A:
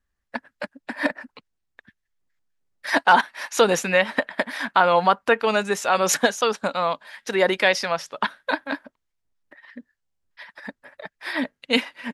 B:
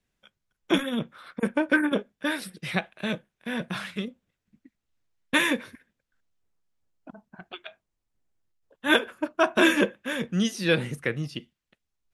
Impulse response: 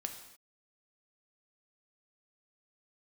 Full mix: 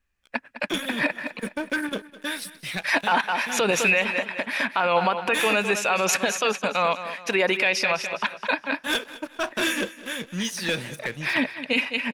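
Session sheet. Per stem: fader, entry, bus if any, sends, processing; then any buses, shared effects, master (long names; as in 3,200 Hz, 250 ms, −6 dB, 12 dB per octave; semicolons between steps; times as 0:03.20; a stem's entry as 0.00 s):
+1.0 dB, 0.00 s, no send, echo send −13 dB, parametric band 2,500 Hz +14 dB 0.29 octaves
−16.5 dB, 0.00 s, no send, echo send −18 dB, high-shelf EQ 2,100 Hz +11.5 dB; leveller curve on the samples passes 3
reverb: not used
echo: repeating echo 207 ms, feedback 36%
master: brickwall limiter −11 dBFS, peak gain reduction 12.5 dB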